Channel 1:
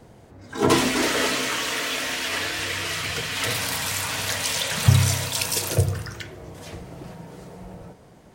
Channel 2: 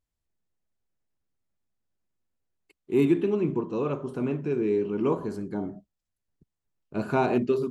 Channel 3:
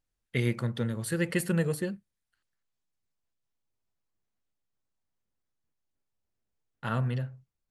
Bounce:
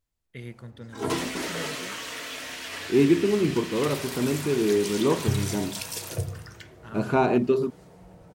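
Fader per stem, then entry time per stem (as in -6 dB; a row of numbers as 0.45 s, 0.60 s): -9.5 dB, +2.5 dB, -12.0 dB; 0.40 s, 0.00 s, 0.00 s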